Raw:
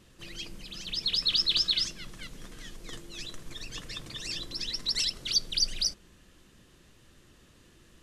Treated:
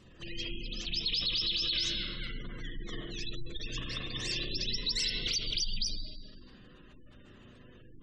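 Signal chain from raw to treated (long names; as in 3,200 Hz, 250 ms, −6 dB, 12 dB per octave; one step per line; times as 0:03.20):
spring reverb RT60 1.4 s, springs 32/40/50 ms, chirp 80 ms, DRR −2.5 dB
brickwall limiter −22.5 dBFS, peak gain reduction 9.5 dB
gate on every frequency bin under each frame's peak −25 dB strong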